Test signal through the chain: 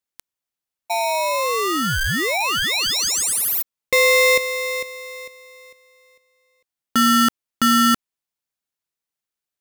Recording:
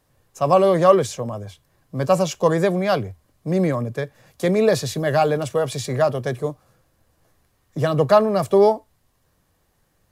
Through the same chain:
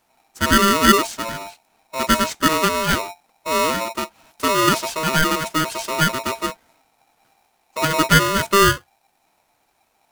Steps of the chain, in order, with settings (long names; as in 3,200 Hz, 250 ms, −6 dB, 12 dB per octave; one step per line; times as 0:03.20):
ring modulator with a square carrier 790 Hz